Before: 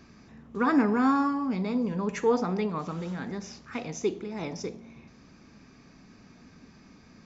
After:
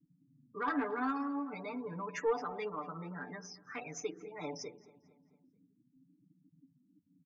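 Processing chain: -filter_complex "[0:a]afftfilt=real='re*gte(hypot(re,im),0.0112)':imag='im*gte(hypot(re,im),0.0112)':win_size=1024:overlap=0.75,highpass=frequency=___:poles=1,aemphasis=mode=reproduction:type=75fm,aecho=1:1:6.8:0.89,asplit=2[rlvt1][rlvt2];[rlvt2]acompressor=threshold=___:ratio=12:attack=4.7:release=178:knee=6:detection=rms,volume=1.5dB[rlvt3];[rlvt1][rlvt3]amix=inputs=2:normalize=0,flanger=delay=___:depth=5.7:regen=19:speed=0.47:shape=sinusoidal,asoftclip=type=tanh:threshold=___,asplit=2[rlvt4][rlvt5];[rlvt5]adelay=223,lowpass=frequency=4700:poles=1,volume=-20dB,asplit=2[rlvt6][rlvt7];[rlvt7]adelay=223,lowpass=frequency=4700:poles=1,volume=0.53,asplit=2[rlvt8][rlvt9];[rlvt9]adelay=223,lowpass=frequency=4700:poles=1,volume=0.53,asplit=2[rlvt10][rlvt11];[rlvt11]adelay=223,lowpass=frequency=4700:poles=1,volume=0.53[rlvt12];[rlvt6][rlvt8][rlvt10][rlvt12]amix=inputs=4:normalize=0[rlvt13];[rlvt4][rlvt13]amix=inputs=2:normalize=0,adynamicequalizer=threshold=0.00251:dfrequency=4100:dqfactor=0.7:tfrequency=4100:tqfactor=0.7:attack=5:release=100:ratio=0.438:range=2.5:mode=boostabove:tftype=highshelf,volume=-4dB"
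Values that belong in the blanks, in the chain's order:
1100, -38dB, 6.1, -18dB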